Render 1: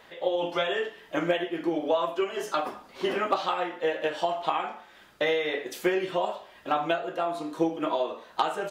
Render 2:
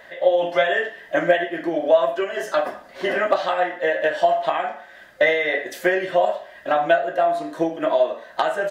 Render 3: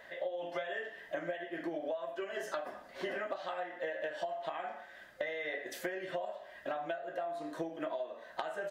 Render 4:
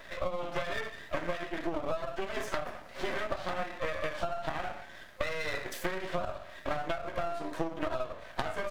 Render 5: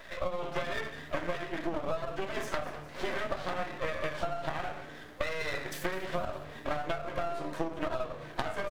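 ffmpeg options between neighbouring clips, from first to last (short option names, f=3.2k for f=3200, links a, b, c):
-af "superequalizer=8b=2.82:11b=2.82,volume=2.5dB"
-af "acompressor=threshold=-26dB:ratio=12,volume=-8.5dB"
-af "aeval=exprs='max(val(0),0)':c=same,volume=8dB"
-filter_complex "[0:a]asplit=7[a][b][c][d][e][f][g];[b]adelay=203,afreqshift=-150,volume=-15.5dB[h];[c]adelay=406,afreqshift=-300,volume=-20.1dB[i];[d]adelay=609,afreqshift=-450,volume=-24.7dB[j];[e]adelay=812,afreqshift=-600,volume=-29.2dB[k];[f]adelay=1015,afreqshift=-750,volume=-33.8dB[l];[g]adelay=1218,afreqshift=-900,volume=-38.4dB[m];[a][h][i][j][k][l][m]amix=inputs=7:normalize=0"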